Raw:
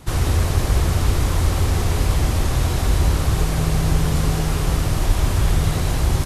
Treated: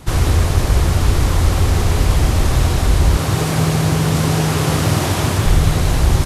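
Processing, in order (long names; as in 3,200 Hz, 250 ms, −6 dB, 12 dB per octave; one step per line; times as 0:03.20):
0:03.17–0:05.46: high-pass filter 95 Hz 24 dB per octave
speech leveller 0.5 s
highs frequency-modulated by the lows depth 0.23 ms
level +5 dB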